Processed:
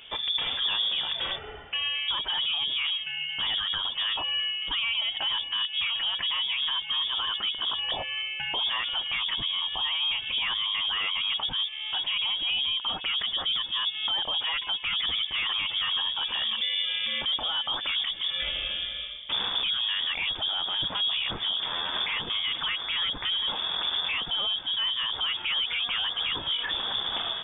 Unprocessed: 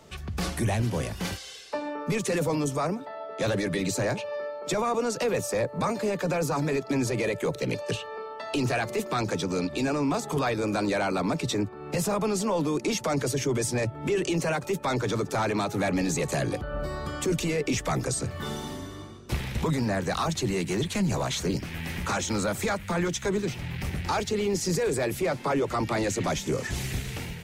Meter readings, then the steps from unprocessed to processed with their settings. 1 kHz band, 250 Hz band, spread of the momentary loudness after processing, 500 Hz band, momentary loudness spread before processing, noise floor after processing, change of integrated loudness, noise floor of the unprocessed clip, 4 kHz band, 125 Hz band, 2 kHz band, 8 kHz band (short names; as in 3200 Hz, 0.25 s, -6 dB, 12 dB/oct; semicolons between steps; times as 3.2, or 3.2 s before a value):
-5.0 dB, -23.0 dB, 3 LU, -19.5 dB, 7 LU, -38 dBFS, +2.0 dB, -41 dBFS, +15.5 dB, -22.0 dB, +2.5 dB, under -40 dB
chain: dynamic EQ 2600 Hz, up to +5 dB, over -50 dBFS, Q 4.8; limiter -26.5 dBFS, peak gain reduction 9.5 dB; inverted band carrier 3500 Hz; gain +5 dB